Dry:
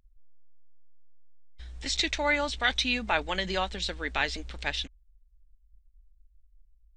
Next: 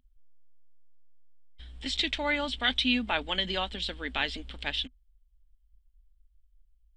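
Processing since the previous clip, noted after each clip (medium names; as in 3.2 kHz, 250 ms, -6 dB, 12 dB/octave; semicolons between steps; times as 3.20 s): graphic EQ with 31 bands 250 Hz +10 dB, 3.15 kHz +11 dB, 6.3 kHz -11 dB; trim -3.5 dB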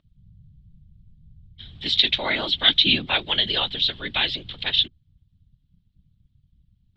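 whisper effect; resonant low-pass 3.8 kHz, resonance Q 3.8; trim +2 dB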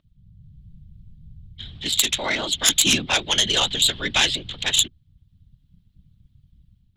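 self-modulated delay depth 0.16 ms; level rider gain up to 6 dB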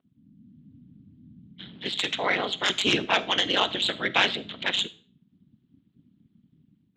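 ring modulator 96 Hz; band-pass 210–2400 Hz; reverberation RT60 0.40 s, pre-delay 5 ms, DRR 16 dB; trim +4 dB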